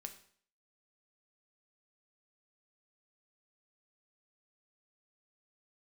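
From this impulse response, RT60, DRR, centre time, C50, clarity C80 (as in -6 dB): 0.55 s, 6.0 dB, 11 ms, 11.5 dB, 15.0 dB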